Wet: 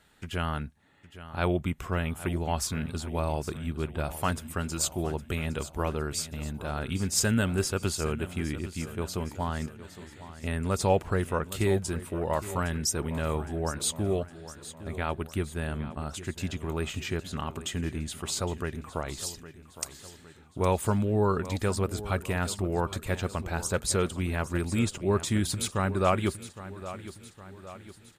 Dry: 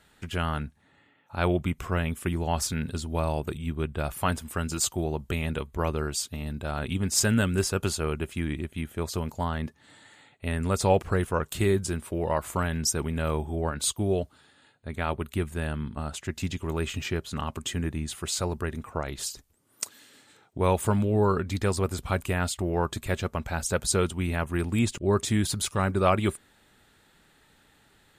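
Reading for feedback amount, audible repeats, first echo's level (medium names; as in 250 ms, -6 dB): 52%, 4, -14.5 dB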